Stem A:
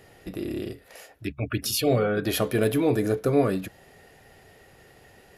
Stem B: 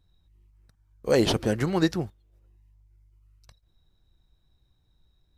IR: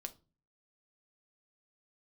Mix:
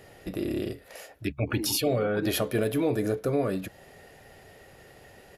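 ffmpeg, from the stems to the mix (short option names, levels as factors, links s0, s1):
-filter_complex "[0:a]equalizer=f=580:t=o:w=0.31:g=4,volume=1.12[s0];[1:a]asplit=3[s1][s2][s3];[s1]bandpass=f=300:t=q:w=8,volume=1[s4];[s2]bandpass=f=870:t=q:w=8,volume=0.501[s5];[s3]bandpass=f=2240:t=q:w=8,volume=0.355[s6];[s4][s5][s6]amix=inputs=3:normalize=0,adelay=400,volume=0.75[s7];[s0][s7]amix=inputs=2:normalize=0,alimiter=limit=0.15:level=0:latency=1:release=438"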